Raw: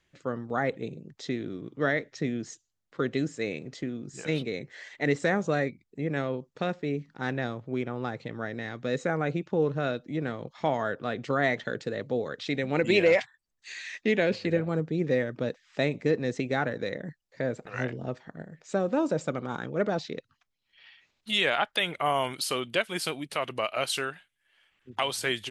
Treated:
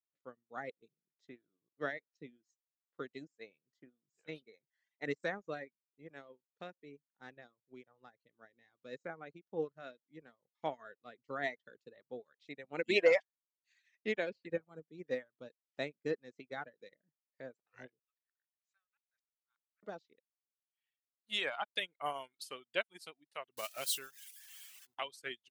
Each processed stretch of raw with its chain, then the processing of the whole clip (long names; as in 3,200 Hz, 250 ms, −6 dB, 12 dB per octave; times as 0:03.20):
0:17.99–0:19.83: inverse Chebyshev high-pass filter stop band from 460 Hz, stop band 60 dB + gate with flip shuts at −33 dBFS, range −26 dB + spectral tilt −2.5 dB per octave
0:23.57–0:24.95: spike at every zero crossing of −21 dBFS + low-shelf EQ 87 Hz +11 dB
whole clip: reverb reduction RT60 0.95 s; high-pass filter 310 Hz 6 dB per octave; expander for the loud parts 2.5 to 1, over −45 dBFS; level −1 dB